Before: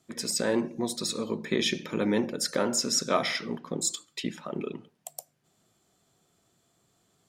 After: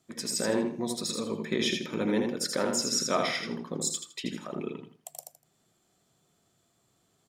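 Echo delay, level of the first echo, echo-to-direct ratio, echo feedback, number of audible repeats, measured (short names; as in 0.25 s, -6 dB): 81 ms, -5.0 dB, -4.5 dB, 24%, 3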